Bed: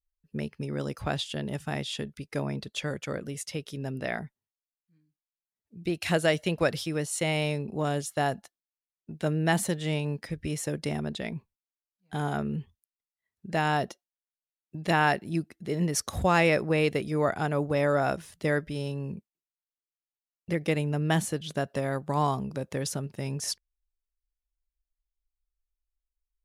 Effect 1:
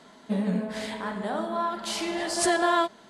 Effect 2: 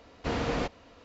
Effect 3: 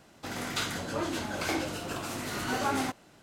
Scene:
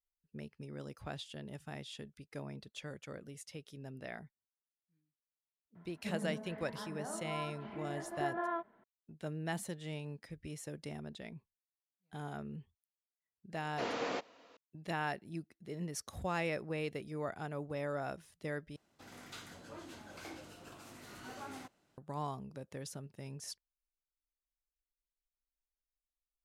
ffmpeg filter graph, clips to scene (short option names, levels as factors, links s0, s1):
-filter_complex "[0:a]volume=0.211[s0];[1:a]lowpass=f=2000:w=0.5412,lowpass=f=2000:w=1.3066[s1];[2:a]highpass=320[s2];[s0]asplit=2[s3][s4];[s3]atrim=end=18.764[s5];[3:a]atrim=end=3.22,asetpts=PTS-STARTPTS,volume=0.133[s6];[s4]atrim=start=21.976[s7];[s1]atrim=end=3.09,asetpts=PTS-STARTPTS,volume=0.2,afade=t=in:d=0.004:c=hsin,afade=t=out:st=3.086:d=0.004:c=hsin,adelay=5750[s8];[s2]atrim=end=1.04,asetpts=PTS-STARTPTS,volume=0.562,afade=t=in:d=0.004:c=hsin,afade=t=out:st=1.036:d=0.004:c=hsin,adelay=13530[s9];[s5][s6]acrossfade=d=0.004:c1=hsin:c2=hsin[s10];[s10][s7]acrossfade=d=0.004:c1=hsin:c2=hsin[s11];[s11][s8][s9]amix=inputs=3:normalize=0"